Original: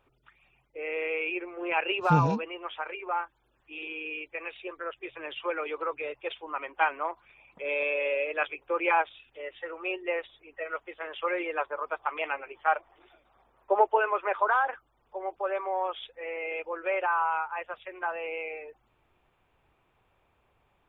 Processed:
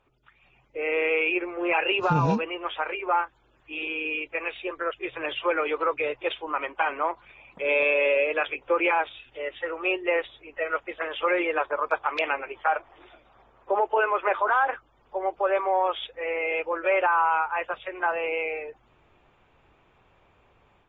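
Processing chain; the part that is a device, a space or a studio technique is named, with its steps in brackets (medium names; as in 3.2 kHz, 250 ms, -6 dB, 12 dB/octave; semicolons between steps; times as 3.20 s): low-bitrate web radio (level rider gain up to 7 dB; peak limiter -14 dBFS, peak gain reduction 10 dB; AAC 24 kbps 32 kHz)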